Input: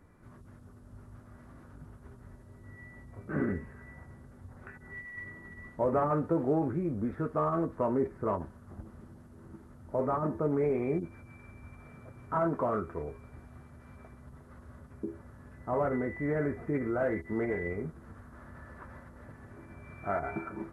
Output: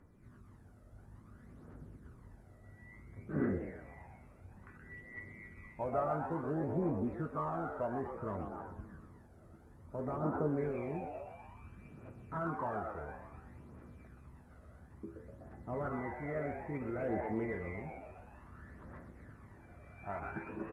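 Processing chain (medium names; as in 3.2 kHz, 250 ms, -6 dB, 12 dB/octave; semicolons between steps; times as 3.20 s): frequency-shifting echo 124 ms, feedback 56%, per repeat +110 Hz, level -7 dB; phaser 0.58 Hz, delay 1.6 ms, feedback 50%; trim -8.5 dB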